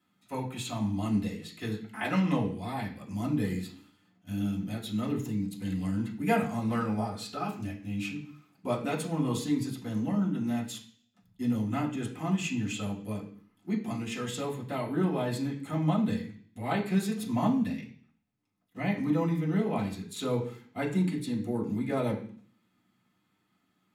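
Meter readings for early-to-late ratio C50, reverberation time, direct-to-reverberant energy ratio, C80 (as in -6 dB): 9.0 dB, 0.50 s, -7.0 dB, 13.0 dB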